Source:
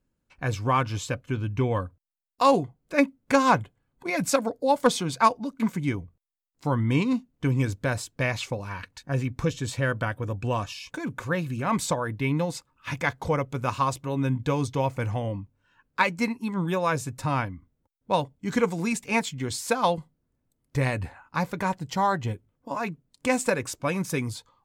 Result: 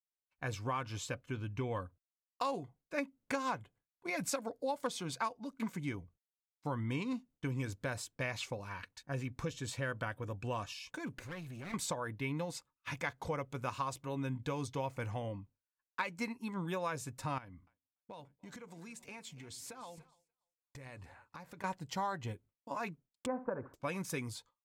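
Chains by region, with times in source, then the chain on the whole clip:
11.13–11.74 s: comb filter that takes the minimum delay 0.47 ms + compression 3:1, threshold -33 dBFS
17.38–21.64 s: compression 16:1, threshold -36 dBFS + two-band feedback delay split 320 Hz, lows 103 ms, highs 290 ms, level -15 dB
23.26–23.74 s: steep low-pass 1.4 kHz + flutter echo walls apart 11.3 m, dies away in 0.25 s
whole clip: expander -44 dBFS; bass shelf 390 Hz -4.5 dB; compression 6:1, threshold -25 dBFS; trim -7.5 dB

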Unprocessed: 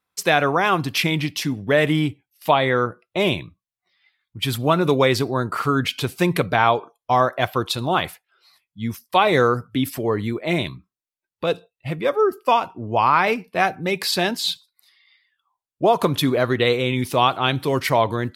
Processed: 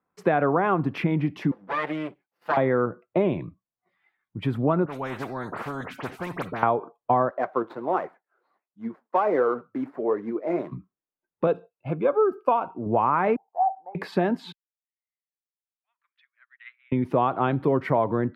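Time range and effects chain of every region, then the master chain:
1.51–2.57 s: comb filter that takes the minimum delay 5.9 ms + high-pass 1.5 kHz 6 dB/octave + peaking EQ 4.6 kHz +6 dB 0.49 oct
4.85–6.63 s: peaking EQ 400 Hz -10 dB 2.3 oct + phase dispersion highs, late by 57 ms, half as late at 2.9 kHz + spectrum-flattening compressor 4:1
7.30–10.72 s: median filter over 15 samples + high-pass 380 Hz + flange 1.4 Hz, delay 1.4 ms, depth 8 ms, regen +60%
11.47–12.86 s: Butterworth band-stop 1.9 kHz, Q 4.6 + bass shelf 400 Hz -7.5 dB
13.36–13.95 s: CVSD coder 64 kbps + Butterworth band-pass 800 Hz, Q 5.1
14.52–16.92 s: steep high-pass 1.8 kHz + tape spacing loss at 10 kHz 44 dB + upward expansion 2.5:1, over -52 dBFS
whole clip: tilt EQ -2.5 dB/octave; compression, threshold -19 dBFS; three-band isolator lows -18 dB, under 150 Hz, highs -23 dB, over 2 kHz; trim +2 dB

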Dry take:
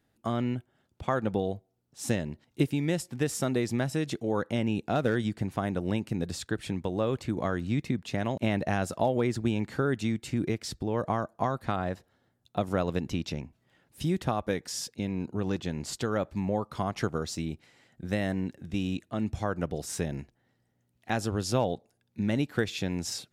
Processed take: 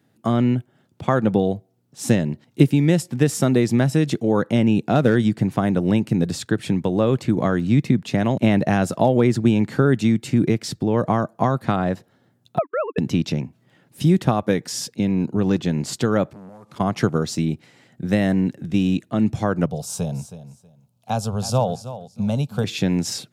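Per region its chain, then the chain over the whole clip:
12.58–12.98 s: formants replaced by sine waves + band-pass filter 1.1 kHz, Q 0.89 + gate -39 dBFS, range -40 dB
16.33–16.80 s: CVSD coder 64 kbps + compression 10:1, threshold -43 dBFS + transformer saturation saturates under 980 Hz
19.66–22.64 s: static phaser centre 780 Hz, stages 4 + feedback delay 320 ms, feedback 20%, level -13.5 dB
whole clip: high-pass 120 Hz 24 dB/octave; bass shelf 260 Hz +9 dB; trim +7 dB

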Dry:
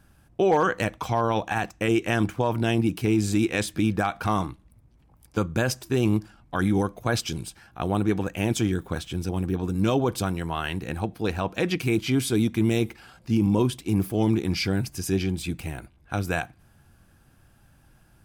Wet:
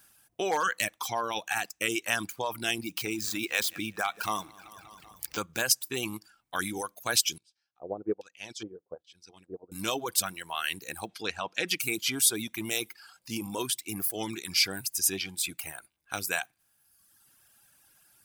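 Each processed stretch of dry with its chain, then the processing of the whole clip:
2.83–5.62 s: median filter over 5 samples + feedback delay 192 ms, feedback 51%, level -17.5 dB + upward compressor, threshold -24 dBFS
7.38–9.72 s: dynamic bell 470 Hz, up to +6 dB, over -39 dBFS, Q 2 + LFO low-pass square 1.2 Hz 570–5000 Hz + upward expansion 2.5:1, over -28 dBFS
11.09–11.68 s: low-pass 5.6 kHz + tape noise reduction on one side only encoder only
whole clip: reverb removal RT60 1.2 s; tilt EQ +4.5 dB/octave; trim -4 dB

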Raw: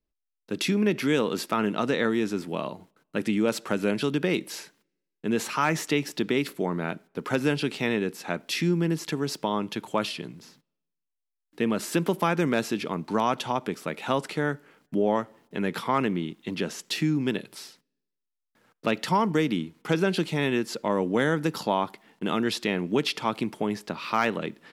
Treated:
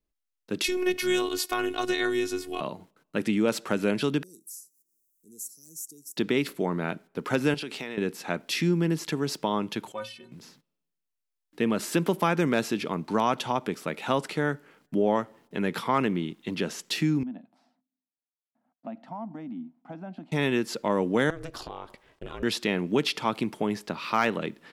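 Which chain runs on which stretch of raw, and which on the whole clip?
0.64–2.61 s: treble shelf 3.6 kHz +9.5 dB + robot voice 365 Hz
4.23–6.17 s: pre-emphasis filter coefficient 0.97 + upward compressor, threshold -54 dBFS + inverse Chebyshev band-stop 800–3300 Hz, stop band 50 dB
7.54–7.98 s: high-pass 290 Hz 6 dB/octave + compression, threshold -31 dBFS
9.92–10.32 s: bass shelf 210 Hz -6.5 dB + inharmonic resonator 110 Hz, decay 0.31 s, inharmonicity 0.03
17.23–20.32 s: two resonant band-passes 420 Hz, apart 1.5 oct + compression 2:1, threshold -35 dBFS
21.30–22.43 s: peaking EQ 13 kHz -9 dB 0.36 oct + compression, threshold -31 dBFS + ring modulator 170 Hz
whole clip: none

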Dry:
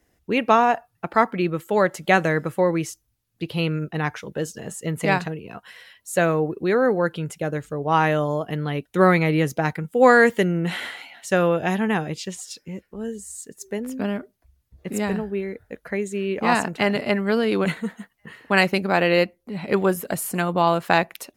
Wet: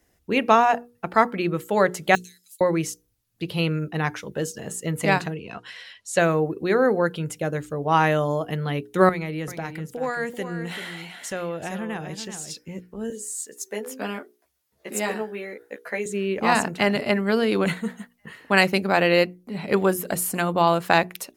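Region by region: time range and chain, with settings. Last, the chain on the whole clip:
2.15–2.61 s: de-esser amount 60% + inverse Chebyshev high-pass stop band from 780 Hz, stop band 80 dB
5.35–6.19 s: low-pass 4.8 kHz + treble shelf 2.7 kHz +9.5 dB
9.09–12.55 s: compression 2:1, threshold -34 dBFS + delay 387 ms -9.5 dB
13.10–16.06 s: high-pass 390 Hz + doubling 14 ms -2 dB
whole clip: tone controls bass 0 dB, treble +3 dB; hum notches 60/120/180/240/300/360/420/480 Hz

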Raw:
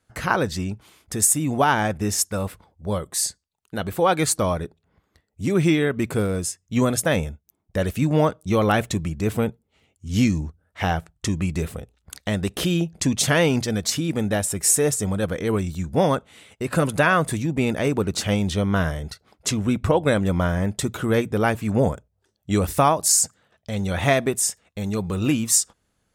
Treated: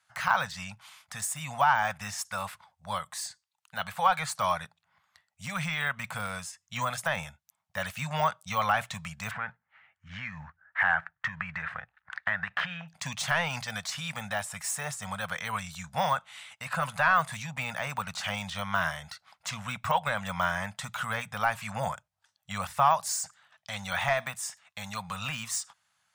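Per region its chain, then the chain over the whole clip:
9.31–12.88 s: block-companded coder 7-bit + compression 10:1, threshold -23 dBFS + resonant low-pass 1.7 kHz, resonance Q 4.7
whole clip: frequency weighting A; de-esser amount 100%; Chebyshev band-stop 140–880 Hz, order 2; trim +2.5 dB

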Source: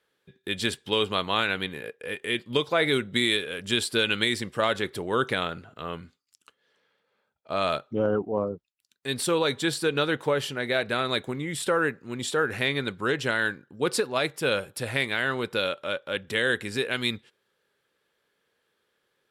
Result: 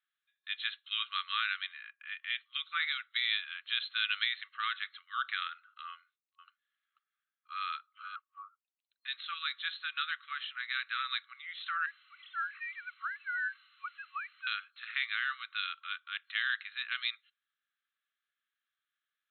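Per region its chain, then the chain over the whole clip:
5.90–8.16 s: tilt EQ -2 dB/octave + delay 488 ms -10 dB
11.86–14.47 s: formants replaced by sine waves + low-pass 2.3 kHz 6 dB/octave + word length cut 8-bit, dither triangular
whole clip: spectral noise reduction 8 dB; FFT band-pass 1.1–4.2 kHz; trim -6 dB

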